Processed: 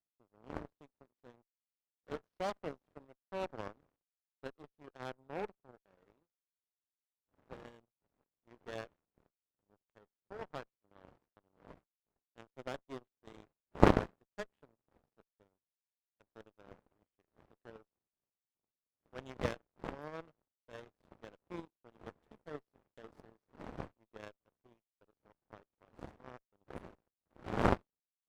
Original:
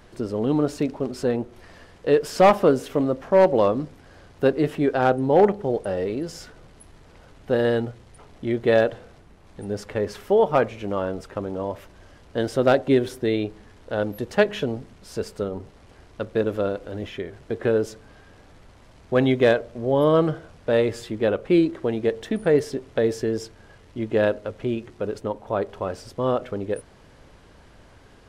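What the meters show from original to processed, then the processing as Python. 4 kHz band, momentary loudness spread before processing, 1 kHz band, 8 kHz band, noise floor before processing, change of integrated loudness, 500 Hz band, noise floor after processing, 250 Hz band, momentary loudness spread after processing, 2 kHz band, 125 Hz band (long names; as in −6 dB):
−18.5 dB, 14 LU, −16.0 dB, can't be measured, −51 dBFS, −16.5 dB, −22.5 dB, below −85 dBFS, −19.0 dB, 23 LU, −17.0 dB, −15.5 dB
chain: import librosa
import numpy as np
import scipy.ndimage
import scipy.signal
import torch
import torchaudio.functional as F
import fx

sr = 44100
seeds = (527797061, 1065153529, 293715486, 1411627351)

y = fx.dmg_wind(x, sr, seeds[0], corner_hz=490.0, level_db=-26.0)
y = fx.power_curve(y, sr, exponent=3.0)
y = fx.running_max(y, sr, window=5)
y = y * 10.0 ** (-3.0 / 20.0)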